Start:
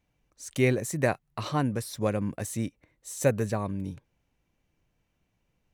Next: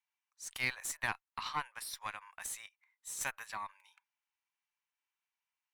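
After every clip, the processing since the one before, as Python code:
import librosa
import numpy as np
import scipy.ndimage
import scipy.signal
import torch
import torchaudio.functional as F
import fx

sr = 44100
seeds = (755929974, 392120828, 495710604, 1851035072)

y = scipy.signal.sosfilt(scipy.signal.ellip(4, 1.0, 70, 900.0, 'highpass', fs=sr, output='sos'), x)
y = fx.tube_stage(y, sr, drive_db=23.0, bias=0.7)
y = fx.noise_reduce_blind(y, sr, reduce_db=8)
y = y * 10.0 ** (1.5 / 20.0)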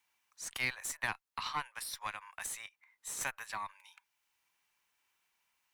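y = fx.band_squash(x, sr, depth_pct=40)
y = y * 10.0 ** (1.0 / 20.0)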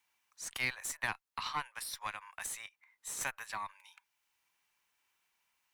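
y = x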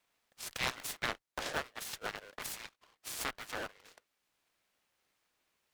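y = fx.cycle_switch(x, sr, every=2, mode='inverted')
y = fx.noise_mod_delay(y, sr, seeds[0], noise_hz=1300.0, depth_ms=0.052)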